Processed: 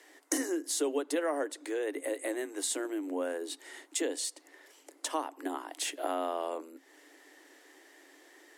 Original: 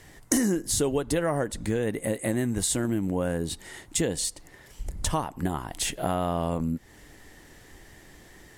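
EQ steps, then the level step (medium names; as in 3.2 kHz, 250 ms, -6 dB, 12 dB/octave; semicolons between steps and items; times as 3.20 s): Chebyshev high-pass 270 Hz, order 10; treble shelf 10 kHz -4 dB; -4.0 dB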